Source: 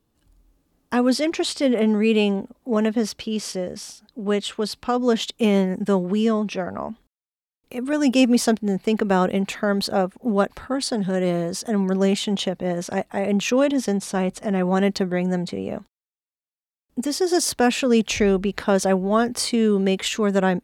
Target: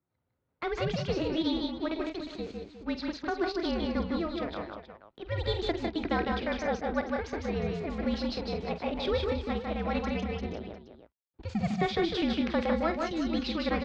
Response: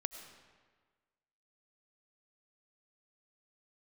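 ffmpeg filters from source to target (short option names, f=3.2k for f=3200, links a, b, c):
-af "adynamicsmooth=sensitivity=8:basefreq=1.7k,aecho=1:1:70|229|272|531|705:0.251|0.668|0.422|0.237|0.188,highpass=f=170:t=q:w=0.5412,highpass=f=170:t=q:w=1.307,lowpass=f=3.3k:t=q:w=0.5176,lowpass=f=3.3k:t=q:w=0.7071,lowpass=f=3.3k:t=q:w=1.932,afreqshift=-230,highpass=59,asetrate=65709,aresample=44100,volume=-9dB"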